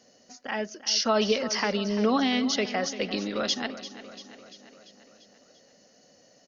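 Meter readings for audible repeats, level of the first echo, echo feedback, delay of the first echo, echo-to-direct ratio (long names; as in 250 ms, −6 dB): 5, −14.0 dB, 60%, 343 ms, −12.0 dB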